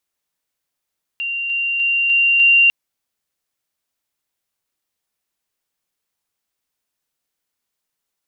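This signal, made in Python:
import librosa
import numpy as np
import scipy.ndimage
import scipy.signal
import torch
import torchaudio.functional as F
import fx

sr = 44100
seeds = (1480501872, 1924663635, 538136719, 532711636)

y = fx.level_ladder(sr, hz=2770.0, from_db=-20.5, step_db=3.0, steps=5, dwell_s=0.3, gap_s=0.0)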